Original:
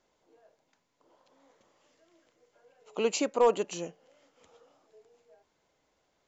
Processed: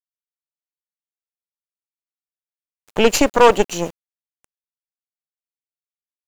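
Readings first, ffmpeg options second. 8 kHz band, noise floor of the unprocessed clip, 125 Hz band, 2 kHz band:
n/a, -76 dBFS, +17.0 dB, +18.0 dB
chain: -af "aeval=exprs='val(0)*gte(abs(val(0)),0.00447)':c=same,aeval=exprs='0.211*(cos(1*acos(clip(val(0)/0.211,-1,1)))-cos(1*PI/2))+0.0422*(cos(3*acos(clip(val(0)/0.211,-1,1)))-cos(3*PI/2))+0.0168*(cos(4*acos(clip(val(0)/0.211,-1,1)))-cos(4*PI/2))+0.00531*(cos(8*acos(clip(val(0)/0.211,-1,1)))-cos(8*PI/2))':c=same,apsyclip=21dB,volume=-1.5dB"

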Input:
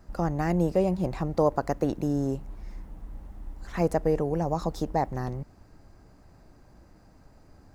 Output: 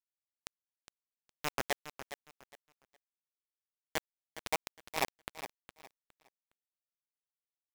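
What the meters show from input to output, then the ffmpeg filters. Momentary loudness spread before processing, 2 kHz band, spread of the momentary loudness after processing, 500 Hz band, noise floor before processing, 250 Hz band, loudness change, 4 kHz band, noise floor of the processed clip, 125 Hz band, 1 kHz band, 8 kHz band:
20 LU, +0.5 dB, 18 LU, -18.0 dB, -56 dBFS, -24.5 dB, -12.0 dB, +5.0 dB, under -85 dBFS, -27.5 dB, -10.5 dB, +3.5 dB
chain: -af "alimiter=limit=-18dB:level=0:latency=1:release=34,areverse,acompressor=threshold=-41dB:ratio=8,areverse,highpass=560,lowpass=2.3k,acontrast=64,aemphasis=mode=production:type=75fm,flanger=delay=7.3:depth=2.8:regen=-1:speed=1.3:shape=triangular,acrusher=bits=5:mix=0:aa=0.000001,aecho=1:1:412|824|1236:0.251|0.0603|0.0145,volume=10.5dB"

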